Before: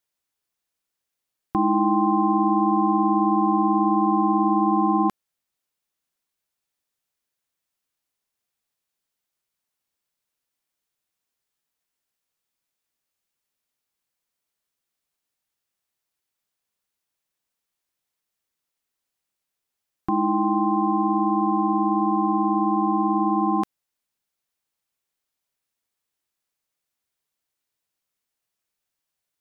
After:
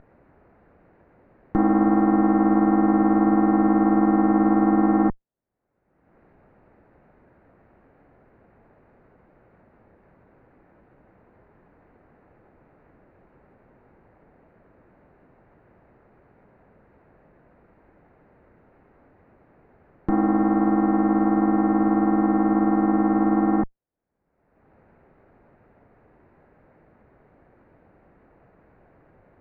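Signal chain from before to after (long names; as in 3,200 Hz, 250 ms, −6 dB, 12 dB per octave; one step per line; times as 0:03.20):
lower of the sound and its delayed copy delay 0.46 ms
low-pass filter 1,200 Hz 24 dB per octave
upward compression, threshold −31 dBFS
level +3.5 dB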